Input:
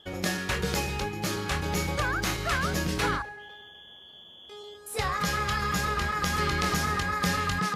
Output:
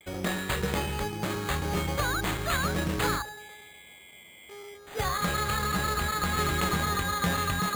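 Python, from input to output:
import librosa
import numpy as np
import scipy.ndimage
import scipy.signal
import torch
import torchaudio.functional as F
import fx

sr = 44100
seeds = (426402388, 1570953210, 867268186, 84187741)

y = scipy.signal.sosfilt(scipy.signal.butter(2, 7400.0, 'lowpass', fs=sr, output='sos'), x)
y = fx.peak_eq(y, sr, hz=2600.0, db=-2.0, octaves=0.77)
y = np.repeat(y[::8], 8)[:len(y)]
y = fx.vibrato(y, sr, rate_hz=0.38, depth_cents=27.0)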